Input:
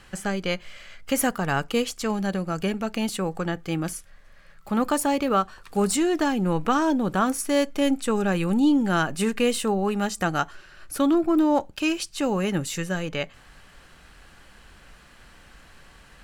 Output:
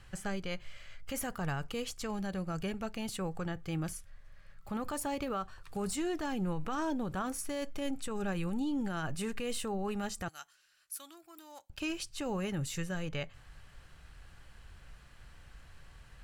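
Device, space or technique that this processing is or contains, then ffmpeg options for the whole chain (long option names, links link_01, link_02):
car stereo with a boomy subwoofer: -filter_complex "[0:a]asettb=1/sr,asplit=3[link_01][link_02][link_03];[link_01]atrim=end=10.284[link_04];[link_02]atrim=start=10.28:end=11.7,asetpts=PTS-STARTPTS,afade=type=in:duration=0.004:curve=qsin,afade=type=out:start_time=1.416:duration=0.004:curve=qsin,aderivative[link_05];[link_03]atrim=start=11.696[link_06];[link_04][link_05]acrossfade=duration=0.004:curve1=hsin:curve2=qsin[link_07];[link_07][link_06]acrossfade=duration=0.004:curve1=qsin:curve2=hsin,lowshelf=frequency=160:width_type=q:width=1.5:gain=8,alimiter=limit=-18dB:level=0:latency=1:release=32,volume=-9dB"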